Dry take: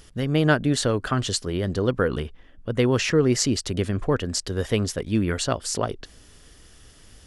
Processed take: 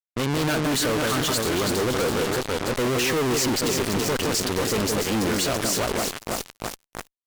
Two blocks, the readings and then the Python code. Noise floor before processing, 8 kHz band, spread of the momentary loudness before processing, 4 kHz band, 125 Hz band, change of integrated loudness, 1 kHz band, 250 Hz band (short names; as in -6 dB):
-51 dBFS, +4.0 dB, 8 LU, +4.0 dB, -4.5 dB, +0.5 dB, +4.0 dB, -0.5 dB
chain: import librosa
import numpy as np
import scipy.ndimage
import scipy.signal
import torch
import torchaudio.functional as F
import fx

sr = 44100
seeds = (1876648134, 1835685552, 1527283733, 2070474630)

y = scipy.signal.sosfilt(scipy.signal.butter(2, 200.0, 'highpass', fs=sr, output='sos'), x)
y = fx.echo_alternate(y, sr, ms=165, hz=1500.0, feedback_pct=79, wet_db=-7.0)
y = fx.fuzz(y, sr, gain_db=38.0, gate_db=-37.0)
y = fx.cheby_harmonics(y, sr, harmonics=(3, 6, 7, 8), levels_db=(-10, -20, -26, -29), full_scale_db=-9.5)
y = F.gain(torch.from_numpy(y), -3.5).numpy()